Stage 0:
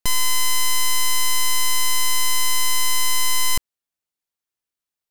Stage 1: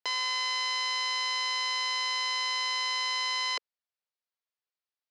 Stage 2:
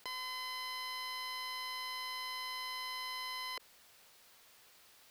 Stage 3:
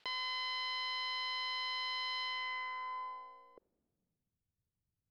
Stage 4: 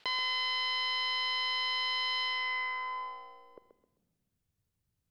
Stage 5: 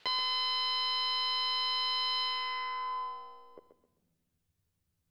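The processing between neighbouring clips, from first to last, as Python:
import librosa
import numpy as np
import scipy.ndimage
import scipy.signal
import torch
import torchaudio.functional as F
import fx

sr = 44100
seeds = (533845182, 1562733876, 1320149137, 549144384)

y1 = scipy.signal.sosfilt(scipy.signal.ellip(3, 1.0, 80, [460.0, 4900.0], 'bandpass', fs=sr, output='sos'), x)
y1 = F.gain(torch.from_numpy(y1), -4.5).numpy()
y2 = np.clip(y1, -10.0 ** (-28.0 / 20.0), 10.0 ** (-28.0 / 20.0))
y2 = fx.env_flatten(y2, sr, amount_pct=70)
y2 = F.gain(torch.from_numpy(y2), -8.0).numpy()
y3 = fx.filter_sweep_lowpass(y2, sr, from_hz=3600.0, to_hz=120.0, start_s=2.21, end_s=4.42, q=1.6)
y3 = fx.upward_expand(y3, sr, threshold_db=-55.0, expansion=1.5)
y3 = F.gain(torch.from_numpy(y3), 1.5).numpy()
y4 = fx.echo_feedback(y3, sr, ms=131, feedback_pct=31, wet_db=-9.5)
y4 = F.gain(torch.from_numpy(y4), 6.5).numpy()
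y5 = fx.doubler(y4, sr, ms=12.0, db=-4)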